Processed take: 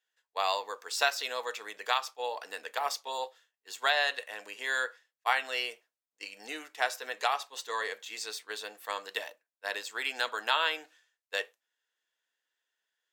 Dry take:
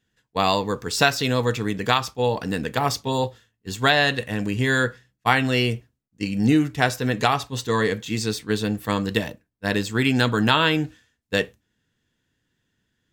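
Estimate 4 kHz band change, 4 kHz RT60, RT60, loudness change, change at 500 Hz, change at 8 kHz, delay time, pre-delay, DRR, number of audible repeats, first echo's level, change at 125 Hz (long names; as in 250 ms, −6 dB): −8.0 dB, no reverb audible, no reverb audible, −10.5 dB, −13.5 dB, −8.0 dB, no echo audible, no reverb audible, no reverb audible, no echo audible, no echo audible, below −40 dB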